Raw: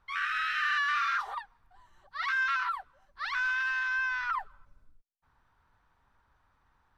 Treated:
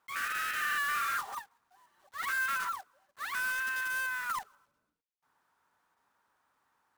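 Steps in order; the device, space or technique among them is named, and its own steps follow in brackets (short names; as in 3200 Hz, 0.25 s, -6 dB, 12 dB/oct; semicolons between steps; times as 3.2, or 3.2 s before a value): early digital voice recorder (BPF 260–3700 Hz; block floating point 3-bit); gain -3 dB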